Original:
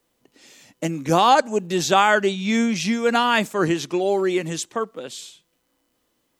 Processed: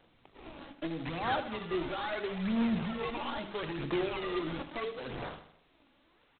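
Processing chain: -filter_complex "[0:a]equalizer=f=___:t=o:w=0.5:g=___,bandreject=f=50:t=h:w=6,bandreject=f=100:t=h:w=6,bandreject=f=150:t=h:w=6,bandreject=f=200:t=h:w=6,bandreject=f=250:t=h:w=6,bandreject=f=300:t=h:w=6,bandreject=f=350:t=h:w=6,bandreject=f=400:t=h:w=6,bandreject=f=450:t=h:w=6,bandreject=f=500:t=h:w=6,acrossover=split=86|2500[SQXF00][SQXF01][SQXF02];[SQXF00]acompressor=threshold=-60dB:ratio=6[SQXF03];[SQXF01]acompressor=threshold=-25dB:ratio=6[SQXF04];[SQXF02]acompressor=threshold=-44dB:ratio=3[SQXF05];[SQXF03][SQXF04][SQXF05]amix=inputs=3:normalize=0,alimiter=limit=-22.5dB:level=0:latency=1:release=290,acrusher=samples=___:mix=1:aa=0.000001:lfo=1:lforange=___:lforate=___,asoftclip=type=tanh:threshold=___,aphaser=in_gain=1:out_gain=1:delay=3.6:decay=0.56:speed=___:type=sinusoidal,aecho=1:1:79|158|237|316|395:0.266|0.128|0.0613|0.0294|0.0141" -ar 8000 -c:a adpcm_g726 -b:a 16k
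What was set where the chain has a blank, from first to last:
79, 2, 19, 19, 0.75, -33.5dB, 0.76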